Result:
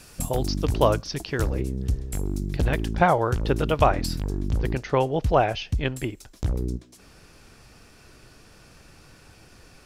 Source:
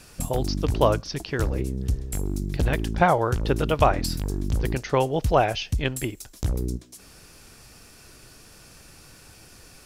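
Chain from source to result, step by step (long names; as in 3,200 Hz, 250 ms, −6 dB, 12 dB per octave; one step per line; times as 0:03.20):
high-shelf EQ 6,000 Hz +2 dB, from 0:01.53 −4 dB, from 0:04.17 −12 dB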